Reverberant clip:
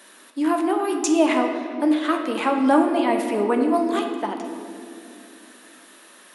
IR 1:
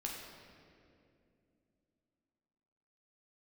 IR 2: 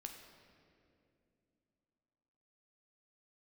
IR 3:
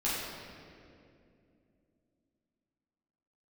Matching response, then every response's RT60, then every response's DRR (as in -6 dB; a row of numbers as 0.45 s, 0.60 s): 2; 2.6 s, 2.7 s, 2.5 s; -2.0 dB, 3.0 dB, -9.5 dB